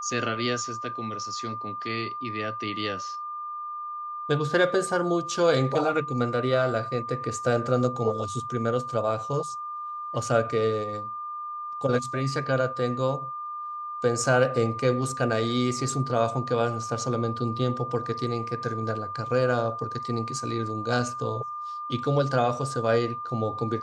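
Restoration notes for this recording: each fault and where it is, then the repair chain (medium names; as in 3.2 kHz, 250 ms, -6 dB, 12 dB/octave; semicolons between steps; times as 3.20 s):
whine 1.2 kHz -32 dBFS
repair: band-stop 1.2 kHz, Q 30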